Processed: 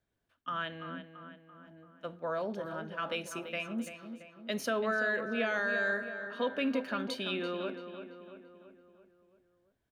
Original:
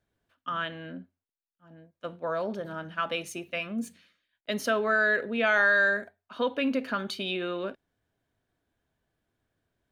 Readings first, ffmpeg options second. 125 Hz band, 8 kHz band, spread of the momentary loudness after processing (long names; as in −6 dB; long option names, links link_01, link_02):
−3.5 dB, −4.0 dB, 18 LU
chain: -filter_complex "[0:a]acrossover=split=500|4300[link_01][link_02][link_03];[link_02]alimiter=limit=-21.5dB:level=0:latency=1[link_04];[link_01][link_04][link_03]amix=inputs=3:normalize=0,asplit=2[link_05][link_06];[link_06]adelay=337,lowpass=frequency=2800:poles=1,volume=-9dB,asplit=2[link_07][link_08];[link_08]adelay=337,lowpass=frequency=2800:poles=1,volume=0.55,asplit=2[link_09][link_10];[link_10]adelay=337,lowpass=frequency=2800:poles=1,volume=0.55,asplit=2[link_11][link_12];[link_12]adelay=337,lowpass=frequency=2800:poles=1,volume=0.55,asplit=2[link_13][link_14];[link_14]adelay=337,lowpass=frequency=2800:poles=1,volume=0.55,asplit=2[link_15][link_16];[link_16]adelay=337,lowpass=frequency=2800:poles=1,volume=0.55[link_17];[link_05][link_07][link_09][link_11][link_13][link_15][link_17]amix=inputs=7:normalize=0,volume=-4dB"